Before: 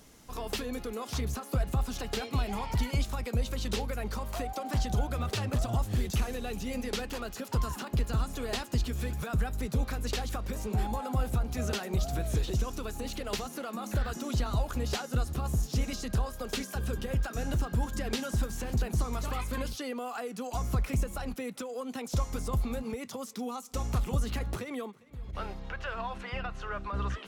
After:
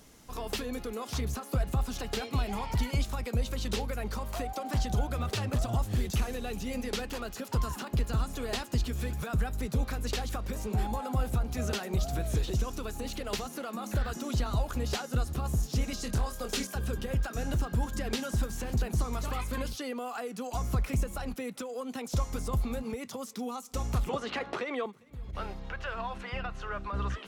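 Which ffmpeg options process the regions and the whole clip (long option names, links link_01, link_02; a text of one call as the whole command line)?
ffmpeg -i in.wav -filter_complex "[0:a]asettb=1/sr,asplit=3[link_01][link_02][link_03];[link_01]atrim=end=16.014[link_04];[link_02]atrim=start=16.01:end=16.67,asetpts=PTS-STARTPTS,afade=type=in:duration=0.004:curve=qsin,afade=type=out:start_time=0.656:duration=0.004:curve=qsin,equalizer=frequency=7400:width_type=o:width=1.7:gain=4.5,aeval=exprs='clip(val(0),-1,0.0531)':channel_layout=same,asplit=2[link_05][link_06];[link_06]adelay=25,volume=-7.5dB[link_07];[link_05][link_07]amix=inputs=2:normalize=0,atrim=end_sample=29106[link_08];[link_03]atrim=start=16.666[link_09];[link_04][link_08]acrossfade=duration=0.004:curve1=hsin:curve2=qsin[link_10];[link_10][link_09]acrossfade=duration=0.004:curve1=qsin:curve2=hsin,asettb=1/sr,asplit=3[link_11][link_12][link_13];[link_11]atrim=end=24.094[link_14];[link_12]atrim=start=24.09:end=24.86,asetpts=PTS-STARTPTS,afade=type=in:duration=0.004:curve=qsin,afade=type=out:start_time=0.766:duration=0.004:curve=qsin,highpass=400,lowpass=3500,acontrast=80[link_15];[link_13]atrim=start=24.856[link_16];[link_14][link_15]acrossfade=duration=0.004:curve1=hsin:curve2=qsin[link_17];[link_17][link_16]acrossfade=duration=0.004:curve1=qsin:curve2=hsin" out.wav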